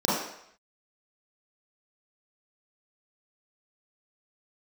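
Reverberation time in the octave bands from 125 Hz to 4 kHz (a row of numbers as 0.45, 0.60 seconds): 0.55, 0.55, 0.70, 0.75, 0.75, 0.70 seconds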